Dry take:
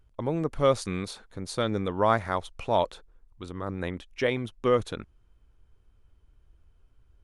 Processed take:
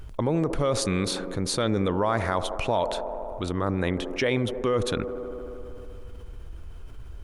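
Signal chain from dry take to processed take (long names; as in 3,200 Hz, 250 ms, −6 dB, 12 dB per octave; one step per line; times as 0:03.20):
brickwall limiter −19 dBFS, peak gain reduction 9.5 dB
delay with a band-pass on its return 77 ms, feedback 79%, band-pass 490 Hz, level −14 dB
envelope flattener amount 50%
level +3.5 dB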